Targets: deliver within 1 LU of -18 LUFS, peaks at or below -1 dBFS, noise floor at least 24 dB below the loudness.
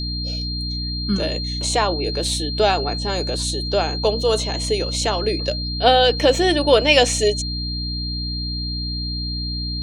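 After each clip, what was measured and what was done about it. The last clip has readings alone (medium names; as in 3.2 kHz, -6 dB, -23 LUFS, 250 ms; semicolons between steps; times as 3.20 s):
hum 60 Hz; highest harmonic 300 Hz; hum level -25 dBFS; steady tone 4.2 kHz; tone level -27 dBFS; loudness -20.0 LUFS; peak level -1.5 dBFS; loudness target -18.0 LUFS
-> de-hum 60 Hz, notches 5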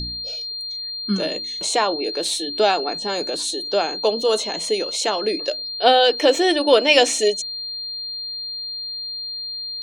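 hum not found; steady tone 4.2 kHz; tone level -27 dBFS
-> band-stop 4.2 kHz, Q 30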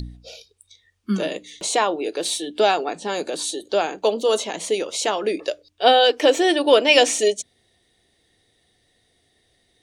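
steady tone not found; loudness -20.0 LUFS; peak level -1.5 dBFS; loudness target -18.0 LUFS
-> trim +2 dB; peak limiter -1 dBFS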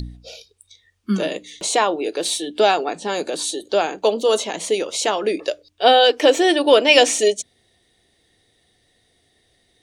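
loudness -18.5 LUFS; peak level -1.0 dBFS; noise floor -63 dBFS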